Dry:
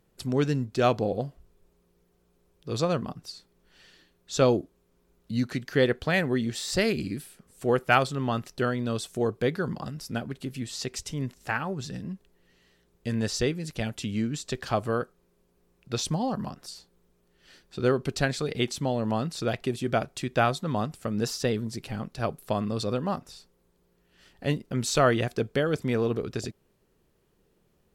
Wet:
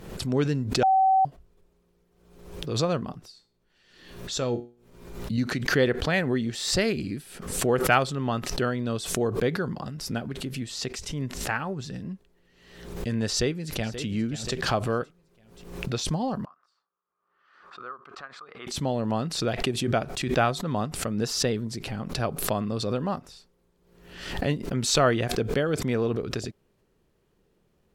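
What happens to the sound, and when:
0:00.83–0:01.25: beep over 765 Hz −16.5 dBFS
0:03.21–0:05.38: tuned comb filter 120 Hz, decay 0.35 s, mix 70%
0:13.30–0:14.04: delay throw 530 ms, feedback 35%, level −14 dB
0:16.45–0:18.67: resonant band-pass 1,200 Hz, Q 8.5
whole clip: high-shelf EQ 8,100 Hz −7 dB; background raised ahead of every attack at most 64 dB per second

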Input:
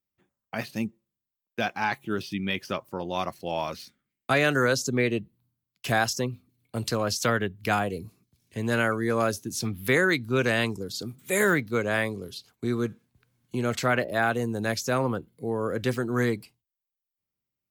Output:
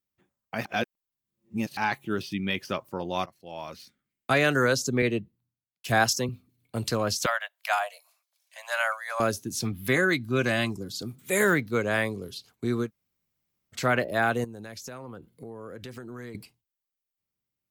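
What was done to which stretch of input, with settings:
0:00.65–0:01.77: reverse
0:03.26–0:04.32: fade in, from −21.5 dB
0:05.02–0:06.29: multiband upward and downward expander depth 70%
0:07.26–0:09.20: Butterworth high-pass 580 Hz 96 dB per octave
0:09.72–0:11.02: notch comb filter 460 Hz
0:12.86–0:13.77: fill with room tone, crossfade 0.10 s
0:14.44–0:16.35: downward compressor 8 to 1, threshold −37 dBFS

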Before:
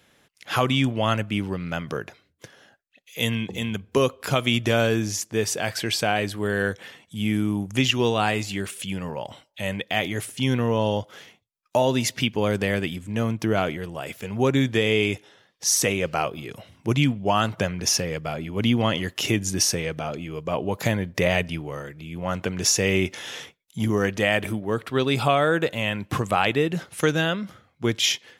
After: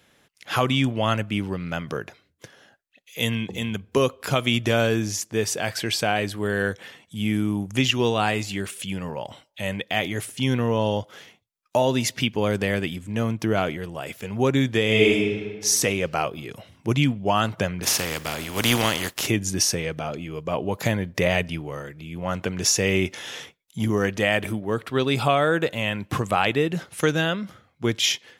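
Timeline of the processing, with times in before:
0:14.85–0:15.66: thrown reverb, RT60 1.4 s, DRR −2 dB
0:17.82–0:19.26: compressing power law on the bin magnitudes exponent 0.46

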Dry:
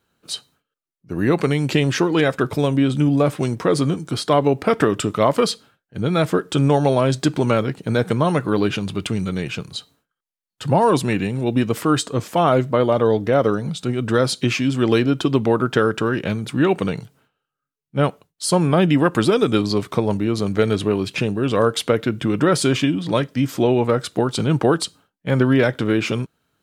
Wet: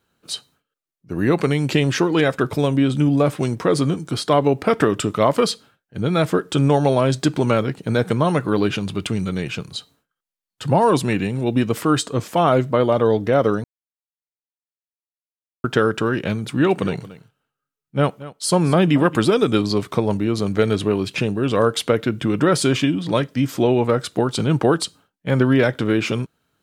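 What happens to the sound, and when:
0:13.64–0:15.64: silence
0:16.38–0:19.16: single-tap delay 227 ms −17 dB

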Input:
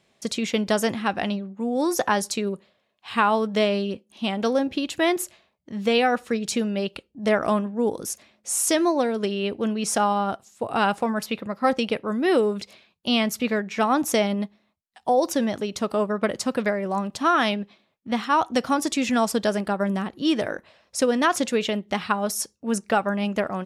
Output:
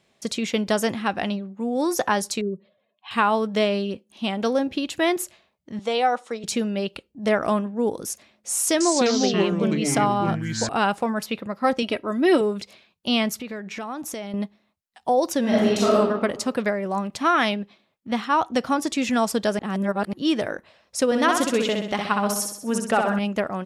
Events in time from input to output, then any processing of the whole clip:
0:02.41–0:03.11: expanding power law on the bin magnitudes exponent 1.9
0:05.79–0:06.44: loudspeaker in its box 400–9,500 Hz, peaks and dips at 410 Hz −3 dB, 830 Hz +5 dB, 1,700 Hz −7 dB, 2,600 Hz −7 dB, 4,600 Hz −4 dB
0:08.55–0:10.69: delay with pitch and tempo change per echo 253 ms, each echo −5 semitones, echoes 2
0:11.82–0:12.41: comb filter 3.1 ms
0:13.34–0:14.34: downward compressor 5 to 1, threshold −30 dBFS
0:15.40–0:15.95: thrown reverb, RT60 1.2 s, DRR −7 dB
0:17.05–0:17.45: parametric band 2,200 Hz +8 dB 0.32 octaves
0:18.20–0:18.98: high-shelf EQ 4,900 Hz −4 dB
0:19.59–0:20.13: reverse
0:21.05–0:23.19: repeating echo 64 ms, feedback 51%, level −4.5 dB

